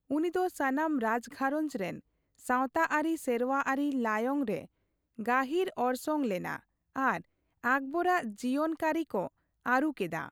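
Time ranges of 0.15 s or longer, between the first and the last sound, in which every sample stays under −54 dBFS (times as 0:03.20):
0:02.00–0:02.35
0:04.66–0:05.18
0:06.59–0:06.96
0:07.22–0:07.64
0:09.28–0:09.66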